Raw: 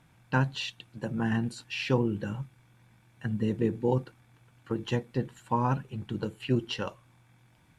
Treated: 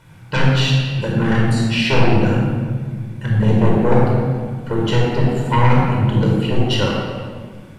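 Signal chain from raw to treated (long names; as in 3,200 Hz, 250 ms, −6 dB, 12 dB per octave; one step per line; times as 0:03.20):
sine wavefolder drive 9 dB, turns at −13 dBFS
0:06.30–0:06.70: tuned comb filter 96 Hz, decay 0.16 s, harmonics all, mix 50%
rectangular room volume 2,500 cubic metres, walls mixed, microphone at 4.8 metres
level −4 dB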